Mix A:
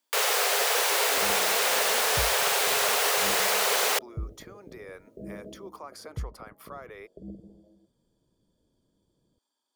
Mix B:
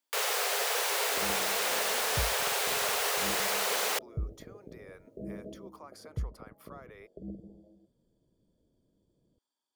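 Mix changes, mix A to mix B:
speech -7.0 dB; first sound -5.5 dB

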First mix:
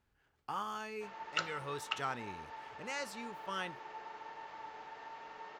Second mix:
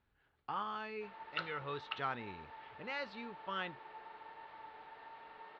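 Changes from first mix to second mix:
background -4.0 dB; master: add Chebyshev low-pass 4100 Hz, order 4

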